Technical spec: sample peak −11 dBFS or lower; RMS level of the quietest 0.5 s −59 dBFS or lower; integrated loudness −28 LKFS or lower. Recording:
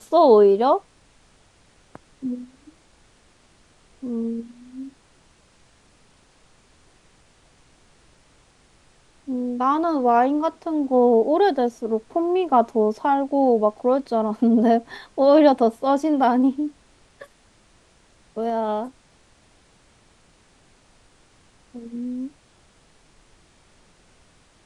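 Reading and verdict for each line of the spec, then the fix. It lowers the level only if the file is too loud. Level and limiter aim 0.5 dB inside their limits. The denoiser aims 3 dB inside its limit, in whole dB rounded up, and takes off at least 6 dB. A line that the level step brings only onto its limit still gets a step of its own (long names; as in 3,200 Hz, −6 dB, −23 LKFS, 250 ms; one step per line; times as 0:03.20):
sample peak −3.0 dBFS: out of spec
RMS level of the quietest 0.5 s −57 dBFS: out of spec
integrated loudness −20.0 LKFS: out of spec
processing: level −8.5 dB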